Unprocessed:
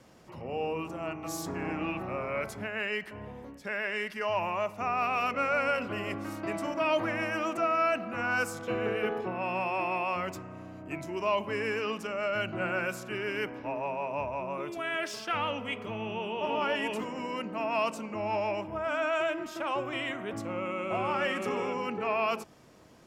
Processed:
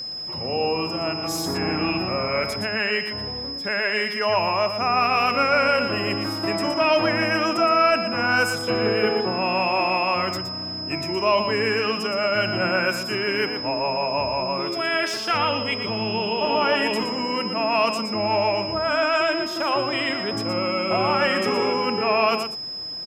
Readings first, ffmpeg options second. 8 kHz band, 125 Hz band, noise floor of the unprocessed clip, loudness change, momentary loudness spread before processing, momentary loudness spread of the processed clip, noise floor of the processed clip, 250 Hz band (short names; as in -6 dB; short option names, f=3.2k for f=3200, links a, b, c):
+9.0 dB, +9.5 dB, -47 dBFS, +9.5 dB, 8 LU, 6 LU, -31 dBFS, +9.5 dB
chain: -filter_complex "[0:a]acontrast=51,aeval=exprs='val(0)+0.0251*sin(2*PI*5100*n/s)':c=same,asplit=2[a][b];[b]aecho=0:1:118:0.376[c];[a][c]amix=inputs=2:normalize=0,volume=2.5dB"